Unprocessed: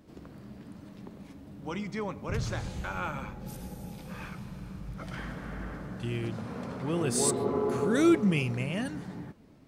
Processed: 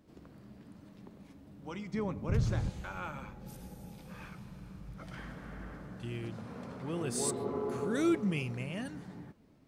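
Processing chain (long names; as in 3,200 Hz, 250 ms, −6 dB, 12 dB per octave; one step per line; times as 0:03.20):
0:01.93–0:02.70: low-shelf EQ 430 Hz +10.5 dB
level −6.5 dB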